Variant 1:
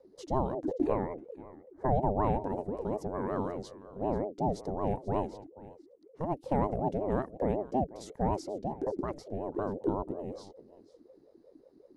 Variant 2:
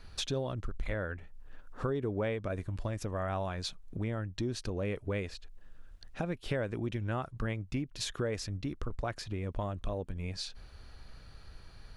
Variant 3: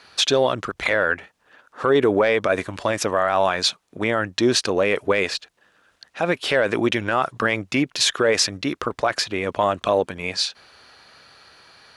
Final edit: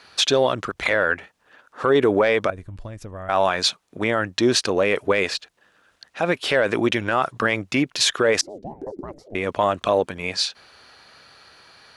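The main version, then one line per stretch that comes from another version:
3
2.50–3.29 s: from 2
8.41–9.35 s: from 1

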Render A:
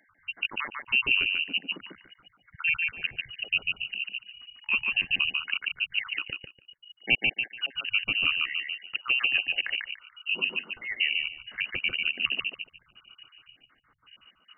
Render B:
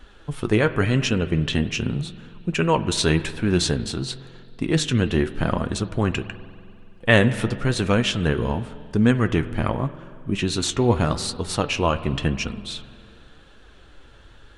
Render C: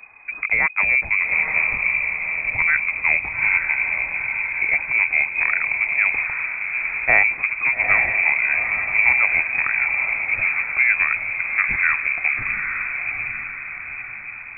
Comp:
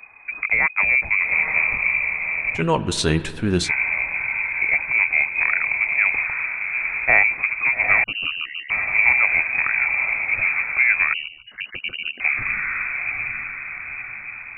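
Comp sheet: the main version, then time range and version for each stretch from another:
C
2.58–3.67 s: from B, crossfade 0.10 s
8.04–8.70 s: from A
11.14–12.20 s: from A

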